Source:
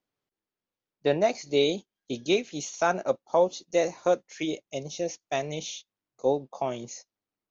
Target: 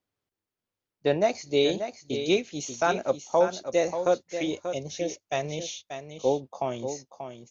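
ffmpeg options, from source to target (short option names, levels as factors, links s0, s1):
-filter_complex "[0:a]equalizer=f=90:t=o:w=0.4:g=11.5,asplit=2[s0][s1];[s1]aecho=0:1:586:0.355[s2];[s0][s2]amix=inputs=2:normalize=0"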